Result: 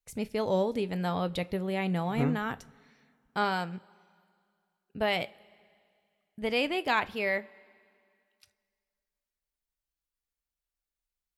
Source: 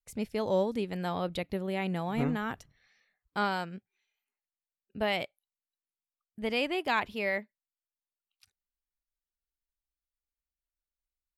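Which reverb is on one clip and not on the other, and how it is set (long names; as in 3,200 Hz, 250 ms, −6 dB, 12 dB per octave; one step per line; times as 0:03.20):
coupled-rooms reverb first 0.2 s, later 2.3 s, from −22 dB, DRR 13 dB
level +1.5 dB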